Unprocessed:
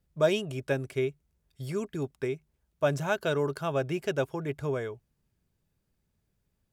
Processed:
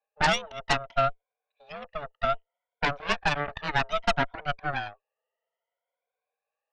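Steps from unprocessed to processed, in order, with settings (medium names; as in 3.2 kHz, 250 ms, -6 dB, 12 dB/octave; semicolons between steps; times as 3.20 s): drifting ripple filter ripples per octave 1.4, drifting +0.62 Hz, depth 21 dB; mistuned SSB +290 Hz 240–2900 Hz; Chebyshev shaper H 6 -8 dB, 7 -26 dB, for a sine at -9.5 dBFS; trim -3.5 dB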